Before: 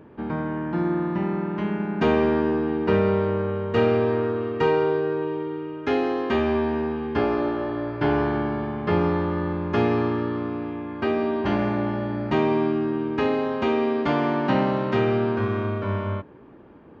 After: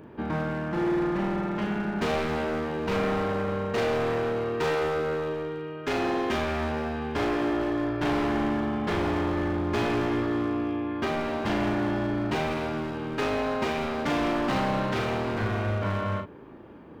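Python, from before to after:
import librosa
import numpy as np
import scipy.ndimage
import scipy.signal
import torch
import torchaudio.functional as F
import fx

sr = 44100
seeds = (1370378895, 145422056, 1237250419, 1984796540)

y = fx.high_shelf(x, sr, hz=4000.0, db=7.0)
y = np.clip(y, -10.0 ** (-24.5 / 20.0), 10.0 ** (-24.5 / 20.0))
y = fx.doubler(y, sr, ms=37.0, db=-5)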